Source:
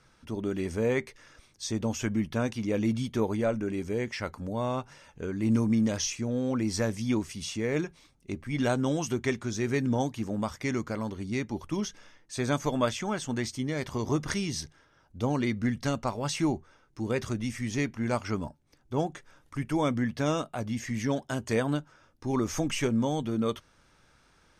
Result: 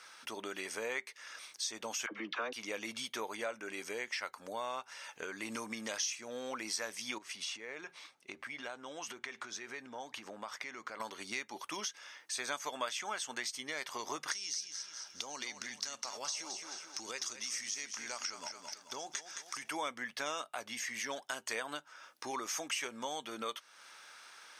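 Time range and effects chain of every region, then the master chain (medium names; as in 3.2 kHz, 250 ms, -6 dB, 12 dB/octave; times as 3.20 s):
2.06–2.53 s: cabinet simulation 150–4200 Hz, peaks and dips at 310 Hz +8 dB, 480 Hz +5 dB, 1.2 kHz +7 dB + upward compressor, threshold -32 dBFS + phase dispersion lows, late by 54 ms, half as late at 690 Hz
7.18–11.00 s: low-pass 2.7 kHz 6 dB/octave + compression, threshold -37 dBFS
14.32–19.69 s: peaking EQ 5.8 kHz +15 dB 0.96 oct + compression 12:1, threshold -33 dBFS + feedback delay 217 ms, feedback 36%, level -10 dB
whole clip: Bessel high-pass 1.2 kHz, order 2; band-stop 7.1 kHz, Q 23; compression 2.5:1, threshold -54 dBFS; trim +12 dB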